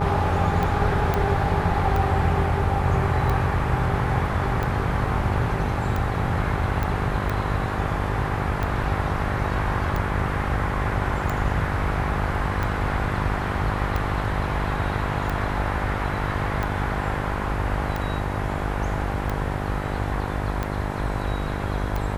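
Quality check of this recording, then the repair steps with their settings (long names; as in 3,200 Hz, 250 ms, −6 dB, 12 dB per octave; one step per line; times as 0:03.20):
mains buzz 50 Hz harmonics 21 −28 dBFS
scratch tick 45 rpm −14 dBFS
0:01.14: click −10 dBFS
0:06.83: click −14 dBFS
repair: click removal
hum removal 50 Hz, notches 21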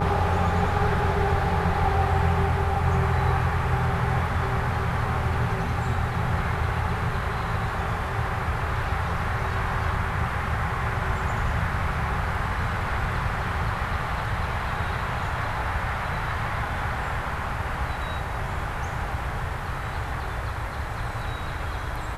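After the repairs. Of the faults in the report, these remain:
0:06.83: click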